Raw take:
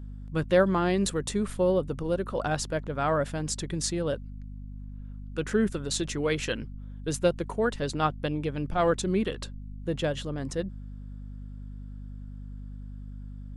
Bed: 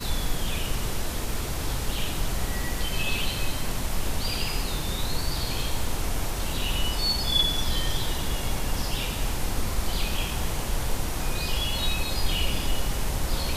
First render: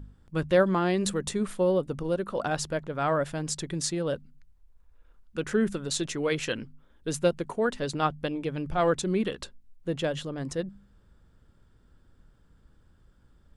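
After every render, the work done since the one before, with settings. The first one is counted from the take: de-hum 50 Hz, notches 5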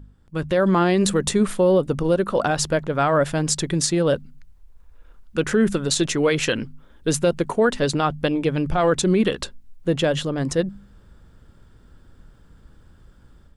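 limiter -20 dBFS, peak gain reduction 8 dB; AGC gain up to 10 dB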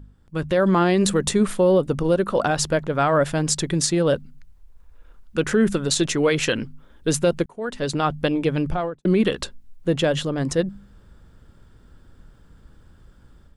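7.46–8.08 fade in; 8.61–9.05 studio fade out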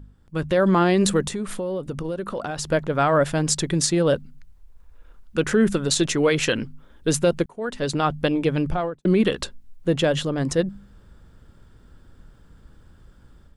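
1.24–2.68 compressor 4:1, threshold -26 dBFS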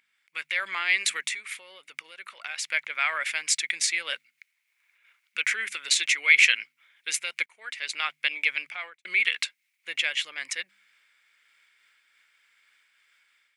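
resonant high-pass 2200 Hz, resonance Q 9.6; noise-modulated level, depth 50%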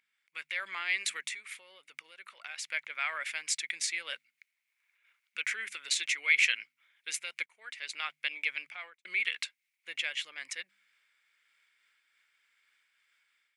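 gain -7.5 dB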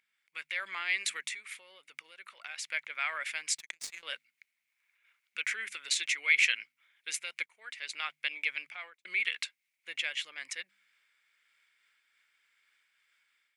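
3.58–4.03 power-law curve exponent 2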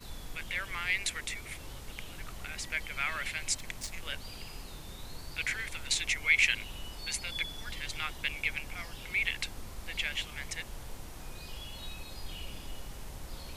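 add bed -16.5 dB

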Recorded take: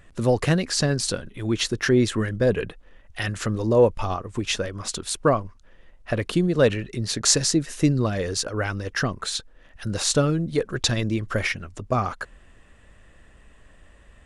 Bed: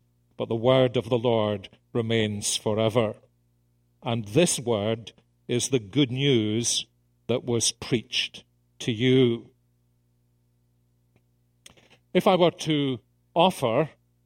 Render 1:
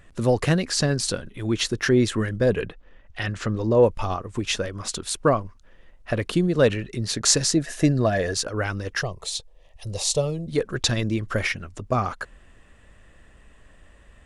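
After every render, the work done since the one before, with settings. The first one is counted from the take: 2.67–3.83 air absorption 77 m; 7.57–8.34 small resonant body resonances 660/1700 Hz, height 13 dB, ringing for 35 ms; 9.01–10.48 fixed phaser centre 620 Hz, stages 4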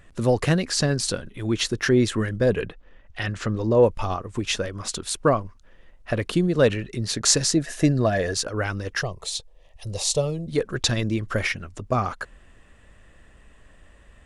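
nothing audible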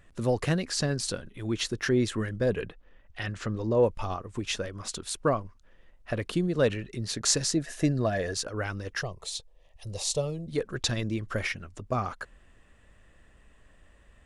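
gain -6 dB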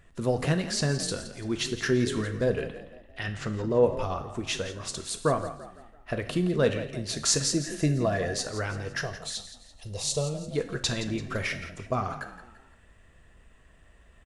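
frequency-shifting echo 0.169 s, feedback 42%, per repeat +38 Hz, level -13 dB; non-linear reverb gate 0.19 s falling, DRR 7 dB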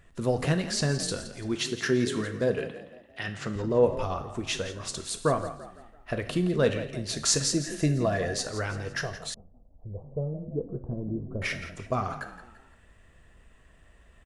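1.54–3.56 HPF 120 Hz; 9.34–11.42 Gaussian blur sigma 13 samples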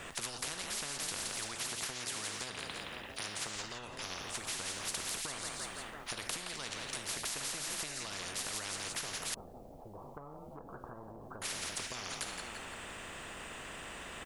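compressor 12:1, threshold -32 dBFS, peak gain reduction 16.5 dB; spectral compressor 10:1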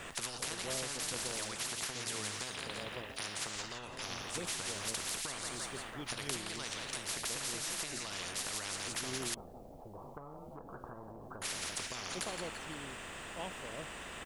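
add bed -24.5 dB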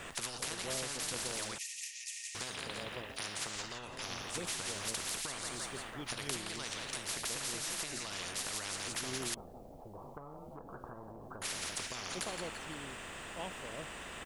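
1.58–2.35 rippled Chebyshev high-pass 1800 Hz, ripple 9 dB

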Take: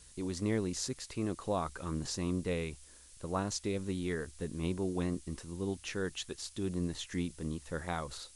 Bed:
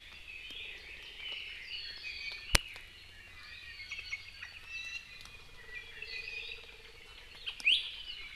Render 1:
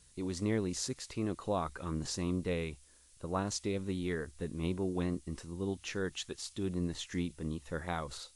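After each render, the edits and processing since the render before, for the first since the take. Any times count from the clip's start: noise print and reduce 6 dB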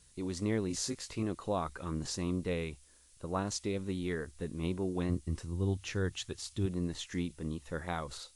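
0.68–1.23 doubler 19 ms -4.5 dB; 5.09–6.66 bell 95 Hz +11 dB 0.99 oct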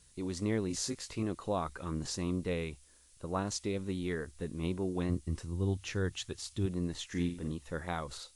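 7.07–7.52 flutter echo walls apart 7.9 m, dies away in 0.39 s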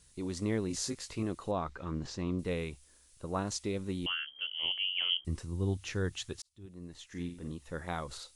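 1.51–2.39 air absorption 120 m; 4.06–5.25 inverted band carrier 3200 Hz; 6.42–8.02 fade in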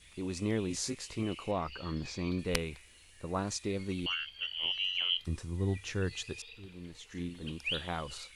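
add bed -7.5 dB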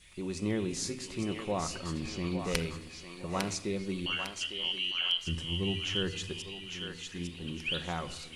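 thinning echo 0.853 s, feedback 42%, high-pass 870 Hz, level -4 dB; shoebox room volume 3500 m³, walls furnished, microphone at 0.99 m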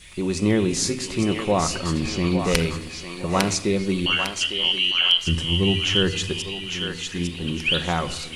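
gain +12 dB; limiter -1 dBFS, peak gain reduction 2.5 dB

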